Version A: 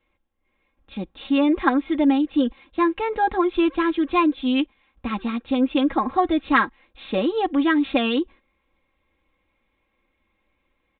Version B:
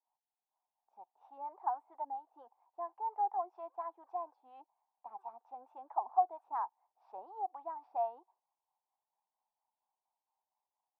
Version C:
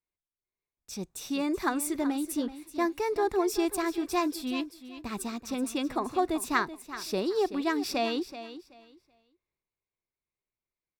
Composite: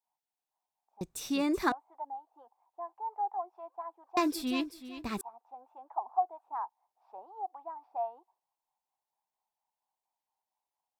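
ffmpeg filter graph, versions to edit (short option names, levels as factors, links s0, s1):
-filter_complex "[2:a]asplit=2[s0][s1];[1:a]asplit=3[s2][s3][s4];[s2]atrim=end=1.012[s5];[s0]atrim=start=1.008:end=1.722[s6];[s3]atrim=start=1.718:end=4.172[s7];[s1]atrim=start=4.168:end=5.212[s8];[s4]atrim=start=5.208[s9];[s5][s6]acrossfade=d=0.004:c1=hsin:c2=hsin[s10];[s10][s7]acrossfade=d=0.004:c1=hsin:c2=hsin[s11];[s11][s8]acrossfade=d=0.004:c1=hsin:c2=hsin[s12];[s12][s9]acrossfade=d=0.004:c1=hsin:c2=hsin"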